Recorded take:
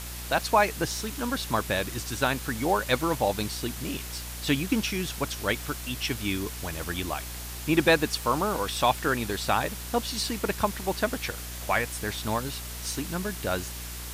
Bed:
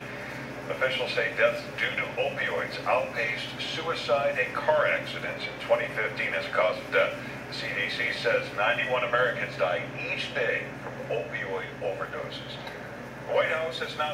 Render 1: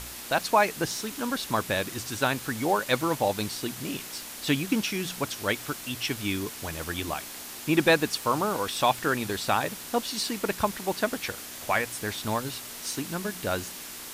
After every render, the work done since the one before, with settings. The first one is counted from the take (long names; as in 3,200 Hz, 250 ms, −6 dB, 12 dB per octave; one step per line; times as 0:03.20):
hum removal 60 Hz, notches 3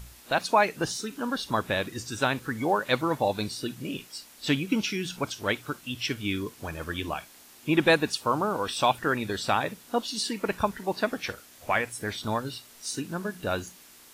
noise reduction from a noise print 12 dB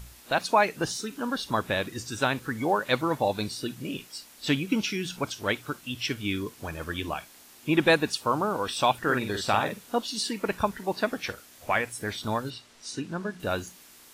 0:09.03–0:09.98: double-tracking delay 48 ms −6 dB
0:12.50–0:13.40: high-frequency loss of the air 68 metres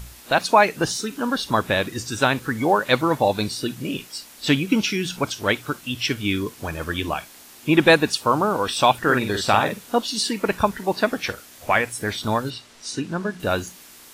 level +6.5 dB